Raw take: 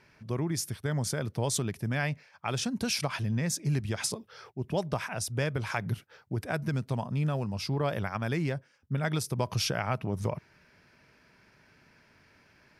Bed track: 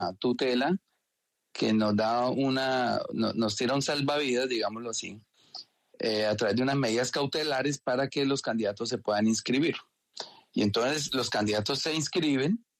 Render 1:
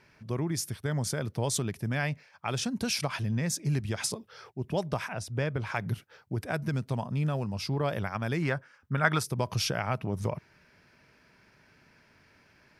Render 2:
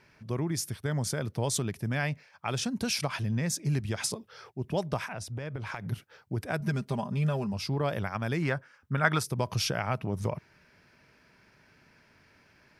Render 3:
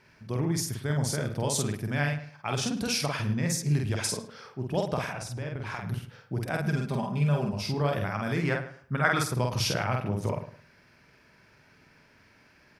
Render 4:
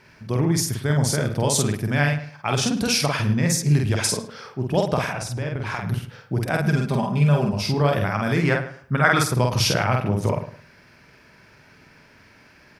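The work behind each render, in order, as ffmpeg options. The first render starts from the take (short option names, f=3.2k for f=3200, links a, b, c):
-filter_complex "[0:a]asettb=1/sr,asplit=3[a][b][c];[a]atrim=end=5.124[d];[b]atrim=start=5.12:end=5.75,asetpts=PTS-STARTPTS,afade=t=in:d=0.004:c=qsin,afade=t=out:st=0.626:d=0.004:c=qsin,lowpass=f=2.8k:p=1[e];[c]atrim=start=5.746[f];[d][e]acrossfade=d=0.004:c1=hsin:c2=qsin[g];[g][f]acrossfade=d=0.004:c1=qsin:c2=hsin,asettb=1/sr,asplit=3[h][i][j];[h]atrim=end=8.424[k];[i]atrim=start=8.42:end=9.24,asetpts=PTS-STARTPTS,afade=t=in:d=0.004:c=qsin,afade=t=out:st=0.816:d=0.004:c=qsin,equalizer=f=1.3k:w=0.96:g=12[l];[j]atrim=start=9.236[m];[k][l]acrossfade=d=0.004:c1=hsin:c2=qsin[n];[n][m]acrossfade=d=0.004:c1=qsin:c2=hsin"
-filter_complex "[0:a]asplit=3[a][b][c];[a]afade=t=out:st=5.04:d=0.02[d];[b]acompressor=threshold=-32dB:ratio=10:attack=3.2:release=140:knee=1:detection=peak,afade=t=in:st=5.04:d=0.02,afade=t=out:st=5.91:d=0.02[e];[c]afade=t=in:st=5.91:d=0.02[f];[d][e][f]amix=inputs=3:normalize=0,asettb=1/sr,asplit=3[g][h][i];[g]atrim=end=6.604[j];[h]atrim=start=6.6:end=7.53,asetpts=PTS-STARTPTS,afade=t=in:d=0.004:c=qsin,afade=t=out:st=0.926:d=0.004:c=qsin,aecho=1:1:5:0.65,atrim=end_sample=41013[k];[i]atrim=start=7.526[l];[j][k]acrossfade=d=0.004:c1=hsin:c2=qsin[m];[m][l]acrossfade=d=0.004:c1=qsin:c2=hsin"
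-filter_complex "[0:a]asplit=2[a][b];[b]adelay=48,volume=-2.5dB[c];[a][c]amix=inputs=2:normalize=0,asplit=2[d][e];[e]adelay=107,lowpass=f=2.6k:p=1,volume=-12dB,asplit=2[f][g];[g]adelay=107,lowpass=f=2.6k:p=1,volume=0.26,asplit=2[h][i];[i]adelay=107,lowpass=f=2.6k:p=1,volume=0.26[j];[d][f][h][j]amix=inputs=4:normalize=0"
-af "volume=7.5dB,alimiter=limit=-2dB:level=0:latency=1"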